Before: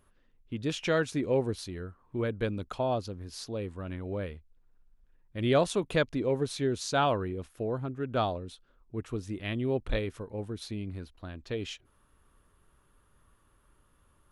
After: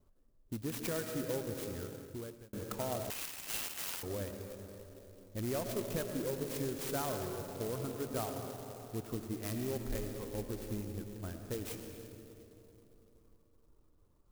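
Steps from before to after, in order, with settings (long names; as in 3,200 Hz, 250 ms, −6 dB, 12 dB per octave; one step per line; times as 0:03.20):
reverb reduction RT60 1.3 s
noise gate with hold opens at −59 dBFS
low-pass that shuts in the quiet parts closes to 740 Hz, open at −29 dBFS
downward compressor 3 to 1, threshold −34 dBFS, peak gain reduction 10.5 dB
soft clipping −27.5 dBFS, distortion −21 dB
comb and all-pass reverb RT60 3.6 s, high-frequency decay 0.4×, pre-delay 60 ms, DRR 4 dB
0:01.89–0:02.53: fade out
0:03.10–0:04.03: voice inversion scrambler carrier 3,200 Hz
converter with an unsteady clock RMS 0.096 ms
level −1 dB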